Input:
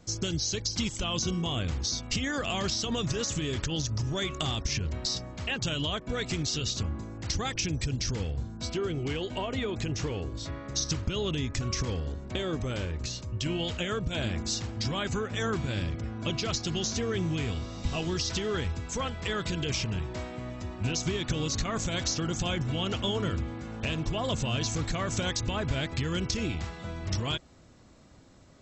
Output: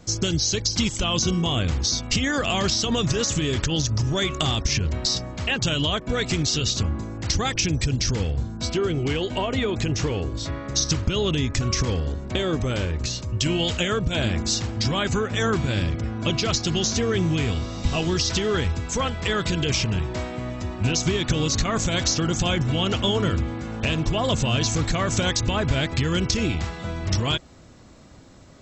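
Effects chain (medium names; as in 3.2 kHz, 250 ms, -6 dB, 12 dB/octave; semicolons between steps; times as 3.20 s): 13.29–13.88 s: treble shelf 5.9 kHz +8 dB; trim +7.5 dB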